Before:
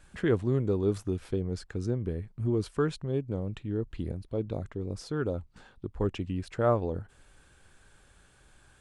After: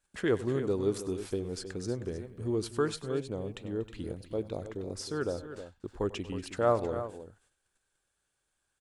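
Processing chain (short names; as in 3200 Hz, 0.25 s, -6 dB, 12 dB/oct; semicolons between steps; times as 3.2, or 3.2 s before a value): gate -52 dBFS, range -21 dB; tone controls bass -8 dB, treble +7 dB; tapped delay 95/103/239/315 ms -19.5/-19.5/-19.5/-11.5 dB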